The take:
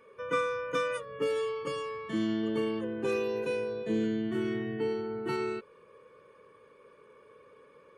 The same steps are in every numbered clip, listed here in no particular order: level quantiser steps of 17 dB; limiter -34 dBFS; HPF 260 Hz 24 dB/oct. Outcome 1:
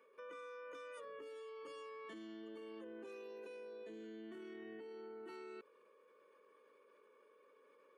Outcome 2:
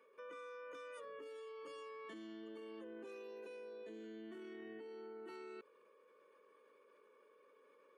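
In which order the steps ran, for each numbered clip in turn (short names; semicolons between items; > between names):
HPF > limiter > level quantiser; limiter > HPF > level quantiser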